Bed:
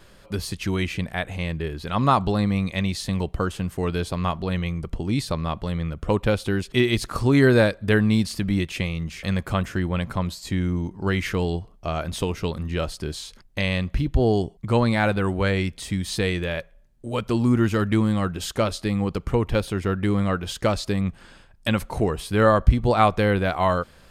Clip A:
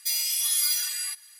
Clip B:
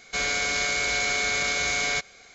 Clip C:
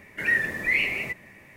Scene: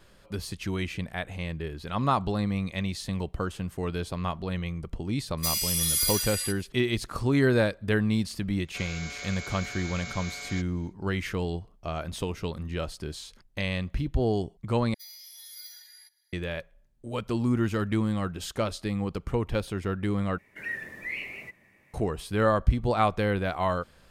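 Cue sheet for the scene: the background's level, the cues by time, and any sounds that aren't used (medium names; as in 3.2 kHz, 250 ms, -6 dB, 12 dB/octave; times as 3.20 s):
bed -6 dB
5.32 s: add A -1.5 dB, fades 0.10 s + phase dispersion highs, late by 57 ms, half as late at 810 Hz
8.61 s: add B -14 dB, fades 0.10 s
14.94 s: replace with A -17 dB + static phaser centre 1.8 kHz, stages 8
20.38 s: replace with C -11.5 dB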